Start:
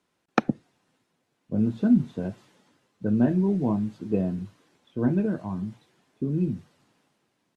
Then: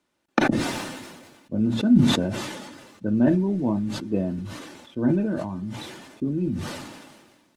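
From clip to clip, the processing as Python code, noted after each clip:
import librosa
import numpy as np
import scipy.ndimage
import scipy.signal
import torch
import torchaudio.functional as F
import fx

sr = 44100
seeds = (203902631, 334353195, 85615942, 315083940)

y = x + 0.37 * np.pad(x, (int(3.4 * sr / 1000.0), 0))[:len(x)]
y = fx.sustainer(y, sr, db_per_s=38.0)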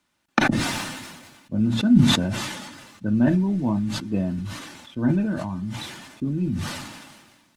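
y = fx.peak_eq(x, sr, hz=430.0, db=-10.5, octaves=1.3)
y = F.gain(torch.from_numpy(y), 4.5).numpy()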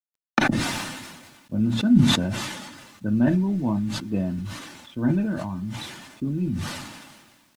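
y = fx.quant_dither(x, sr, seeds[0], bits=10, dither='none')
y = F.gain(torch.from_numpy(y), -1.0).numpy()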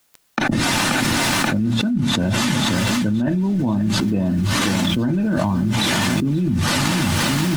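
y = fx.echo_feedback(x, sr, ms=531, feedback_pct=41, wet_db=-16)
y = fx.env_flatten(y, sr, amount_pct=100)
y = F.gain(torch.from_numpy(y), -6.0).numpy()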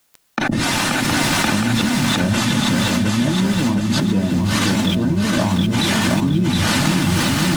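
y = fx.echo_feedback(x, sr, ms=716, feedback_pct=42, wet_db=-4)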